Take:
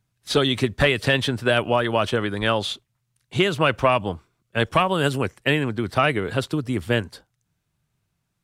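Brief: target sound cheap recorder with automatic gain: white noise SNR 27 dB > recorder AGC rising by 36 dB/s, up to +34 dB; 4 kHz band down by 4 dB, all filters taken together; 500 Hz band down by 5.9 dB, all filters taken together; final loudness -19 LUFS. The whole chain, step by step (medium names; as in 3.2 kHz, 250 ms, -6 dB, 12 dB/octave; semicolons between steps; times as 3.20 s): peaking EQ 500 Hz -7.5 dB; peaking EQ 4 kHz -5.5 dB; white noise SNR 27 dB; recorder AGC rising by 36 dB/s, up to +34 dB; trim +5.5 dB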